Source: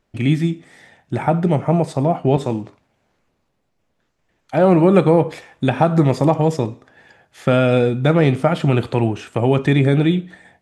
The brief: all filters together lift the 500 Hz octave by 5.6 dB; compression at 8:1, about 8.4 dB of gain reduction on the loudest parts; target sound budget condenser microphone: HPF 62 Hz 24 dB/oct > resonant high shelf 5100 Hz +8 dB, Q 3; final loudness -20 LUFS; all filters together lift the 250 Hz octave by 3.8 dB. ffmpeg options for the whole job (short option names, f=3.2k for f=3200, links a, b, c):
-af "equalizer=f=250:t=o:g=3.5,equalizer=f=500:t=o:g=6,acompressor=threshold=-12dB:ratio=8,highpass=f=62:w=0.5412,highpass=f=62:w=1.3066,highshelf=f=5.1k:t=q:w=3:g=8,volume=-1dB"